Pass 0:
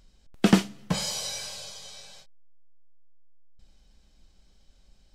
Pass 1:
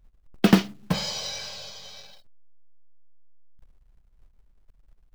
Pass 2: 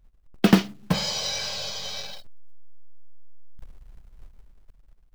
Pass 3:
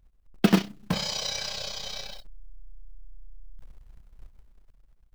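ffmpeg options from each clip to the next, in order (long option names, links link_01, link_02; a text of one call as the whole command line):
ffmpeg -i in.wav -af "lowpass=frequency=5700:width=0.5412,lowpass=frequency=5700:width=1.3066,anlmdn=0.00631,acrusher=bits=5:mode=log:mix=0:aa=0.000001,volume=2dB" out.wav
ffmpeg -i in.wav -af "dynaudnorm=framelen=200:gausssize=9:maxgain=12dB" out.wav
ffmpeg -i in.wav -af "tremolo=f=31:d=0.621" out.wav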